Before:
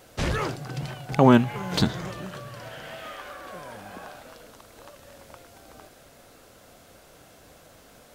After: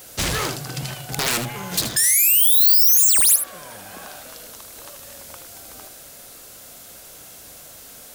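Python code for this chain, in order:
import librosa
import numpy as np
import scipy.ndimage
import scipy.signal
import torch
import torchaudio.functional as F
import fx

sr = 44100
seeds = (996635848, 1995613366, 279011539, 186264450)

p1 = (np.mod(10.0 ** (8.5 / 20.0) * x + 1.0, 2.0) - 1.0) / 10.0 ** (8.5 / 20.0)
p2 = x + (p1 * 10.0 ** (-7.0 / 20.0))
p3 = fx.spec_paint(p2, sr, seeds[0], shape='rise', start_s=1.96, length_s=1.4, low_hz=1700.0, high_hz=11000.0, level_db=-11.0)
p4 = 10.0 ** (-19.0 / 20.0) * (np.abs((p3 / 10.0 ** (-19.0 / 20.0) + 3.0) % 4.0 - 2.0) - 1.0)
p5 = fx.rider(p4, sr, range_db=10, speed_s=2.0)
p6 = librosa.effects.preemphasis(p5, coef=0.8, zi=[0.0])
p7 = p6 + fx.echo_single(p6, sr, ms=77, db=-10.0, dry=0)
y = p7 * 10.0 ** (7.5 / 20.0)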